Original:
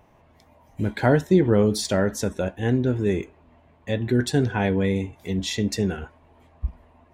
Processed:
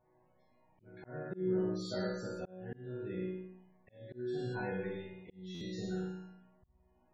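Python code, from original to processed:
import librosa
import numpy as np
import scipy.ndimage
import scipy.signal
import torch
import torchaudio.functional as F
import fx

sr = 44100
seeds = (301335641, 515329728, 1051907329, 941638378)

y = fx.high_shelf(x, sr, hz=4200.0, db=-9.0)
y = fx.resonator_bank(y, sr, root=47, chord='major', decay_s=0.82)
y = fx.room_flutter(y, sr, wall_m=9.3, rt60_s=0.8)
y = fx.spec_topn(y, sr, count=64)
y = fx.auto_swell(y, sr, attack_ms=516.0)
y = fx.buffer_glitch(y, sr, at_s=(5.54,), block=512, repeats=5)
y = y * 10.0 ** (5.0 / 20.0)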